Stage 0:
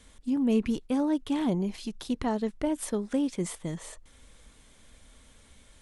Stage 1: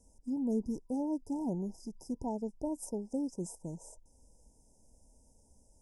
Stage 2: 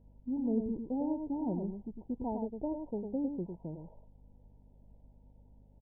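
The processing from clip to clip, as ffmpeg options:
-af "afftfilt=real='re*(1-between(b*sr/4096,990,4900))':imag='im*(1-between(b*sr/4096,990,4900))':win_size=4096:overlap=0.75,volume=0.422"
-af "aresample=8000,aresample=44100,aecho=1:1:103:0.501,aeval=exprs='val(0)+0.00112*(sin(2*PI*50*n/s)+sin(2*PI*2*50*n/s)/2+sin(2*PI*3*50*n/s)/3+sin(2*PI*4*50*n/s)/4+sin(2*PI*5*50*n/s)/5)':c=same"

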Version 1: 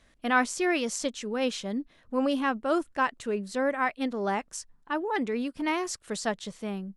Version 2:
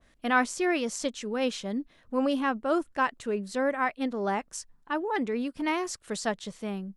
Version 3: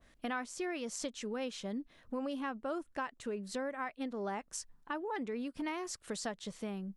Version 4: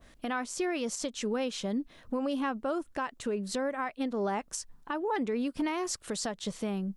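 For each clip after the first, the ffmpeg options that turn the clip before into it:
-af "adynamicequalizer=threshold=0.0112:dfrequency=1800:dqfactor=0.7:tfrequency=1800:tqfactor=0.7:attack=5:release=100:ratio=0.375:range=2:mode=cutabove:tftype=highshelf"
-af "acompressor=threshold=0.0178:ratio=4,volume=0.841"
-af "equalizer=f=1900:w=1.7:g=-2.5,alimiter=level_in=2.11:limit=0.0631:level=0:latency=1:release=148,volume=0.473,volume=2.51"

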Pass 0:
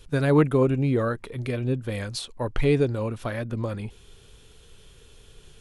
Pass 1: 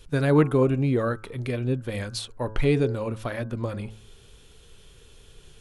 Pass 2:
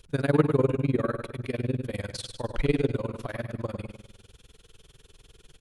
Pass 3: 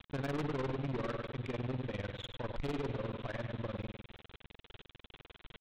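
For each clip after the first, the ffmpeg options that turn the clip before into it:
-af "bandreject=f=108.9:t=h:w=4,bandreject=f=217.8:t=h:w=4,bandreject=f=326.7:t=h:w=4,bandreject=f=435.6:t=h:w=4,bandreject=f=544.5:t=h:w=4,bandreject=f=653.4:t=h:w=4,bandreject=f=762.3:t=h:w=4,bandreject=f=871.2:t=h:w=4,bandreject=f=980.1:t=h:w=4,bandreject=f=1089:t=h:w=4,bandreject=f=1197.9:t=h:w=4,bandreject=f=1306.8:t=h:w=4,bandreject=f=1415.7:t=h:w=4,bandreject=f=1524.6:t=h:w=4,bandreject=f=1633.5:t=h:w=4"
-af "tremolo=f=20:d=0.96,aecho=1:1:101|202|303|404|505:0.422|0.177|0.0744|0.0312|0.0131"
-af "aresample=8000,acrusher=bits=7:mix=0:aa=0.000001,aresample=44100,aeval=exprs='(tanh(39.8*val(0)+0.3)-tanh(0.3))/39.8':c=same,volume=0.841"

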